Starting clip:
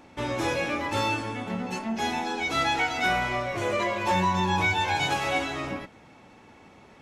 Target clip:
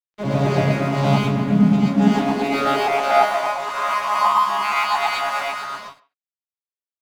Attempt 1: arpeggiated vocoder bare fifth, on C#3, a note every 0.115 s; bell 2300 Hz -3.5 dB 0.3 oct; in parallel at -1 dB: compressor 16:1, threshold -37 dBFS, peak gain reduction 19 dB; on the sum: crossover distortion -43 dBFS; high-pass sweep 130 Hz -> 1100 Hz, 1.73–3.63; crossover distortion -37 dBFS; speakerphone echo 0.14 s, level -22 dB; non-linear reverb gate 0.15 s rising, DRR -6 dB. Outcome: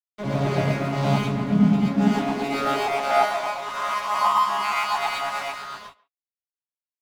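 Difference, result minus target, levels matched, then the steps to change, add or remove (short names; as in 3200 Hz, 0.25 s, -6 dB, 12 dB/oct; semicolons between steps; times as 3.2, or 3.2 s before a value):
compressor: peak gain reduction +11 dB; first crossover distortion: distortion +9 dB
change: compressor 16:1, threshold -25.5 dBFS, peak gain reduction 8 dB; change: first crossover distortion -49.5 dBFS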